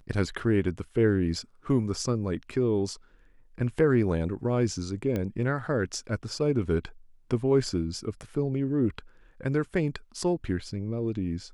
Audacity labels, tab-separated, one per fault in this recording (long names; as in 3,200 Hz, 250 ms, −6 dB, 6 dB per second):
5.160000	5.160000	click −18 dBFS